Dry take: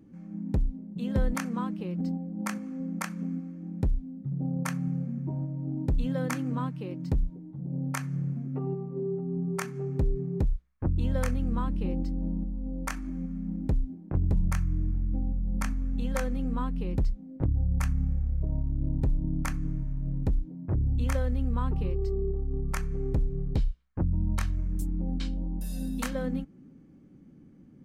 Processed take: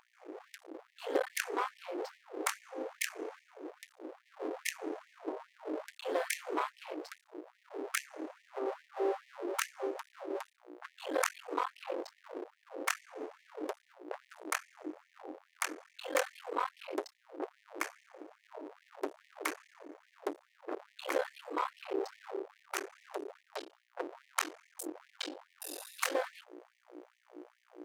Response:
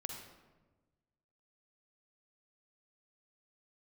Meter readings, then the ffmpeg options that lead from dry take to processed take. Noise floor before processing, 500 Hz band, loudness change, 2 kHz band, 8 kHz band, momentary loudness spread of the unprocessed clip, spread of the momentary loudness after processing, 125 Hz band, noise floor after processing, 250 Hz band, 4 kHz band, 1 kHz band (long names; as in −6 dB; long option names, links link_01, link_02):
−53 dBFS, −0.5 dB, −8.0 dB, +2.5 dB, +2.5 dB, 6 LU, 16 LU, below −40 dB, −72 dBFS, −14.0 dB, +4.5 dB, +2.0 dB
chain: -af "aeval=exprs='val(0)+0.0141*(sin(2*PI*60*n/s)+sin(2*PI*2*60*n/s)/2+sin(2*PI*3*60*n/s)/3+sin(2*PI*4*60*n/s)/4+sin(2*PI*5*60*n/s)/5)':channel_layout=same,aeval=exprs='max(val(0),0)':channel_layout=same,afftfilt=real='re*gte(b*sr/1024,280*pow(1800/280,0.5+0.5*sin(2*PI*2.4*pts/sr)))':imag='im*gte(b*sr/1024,280*pow(1800/280,0.5+0.5*sin(2*PI*2.4*pts/sr)))':win_size=1024:overlap=0.75,volume=6.5dB"